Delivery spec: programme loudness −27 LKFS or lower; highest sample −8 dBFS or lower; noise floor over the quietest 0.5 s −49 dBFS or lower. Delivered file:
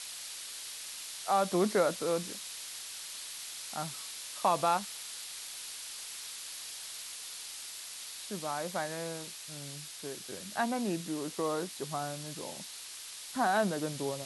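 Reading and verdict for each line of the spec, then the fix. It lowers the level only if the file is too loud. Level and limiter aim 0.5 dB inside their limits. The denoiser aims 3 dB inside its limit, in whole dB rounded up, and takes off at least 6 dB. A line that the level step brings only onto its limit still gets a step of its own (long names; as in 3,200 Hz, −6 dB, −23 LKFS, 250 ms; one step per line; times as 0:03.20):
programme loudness −35.5 LKFS: in spec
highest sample −15.5 dBFS: in spec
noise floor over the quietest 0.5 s −46 dBFS: out of spec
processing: broadband denoise 6 dB, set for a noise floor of −46 dBFS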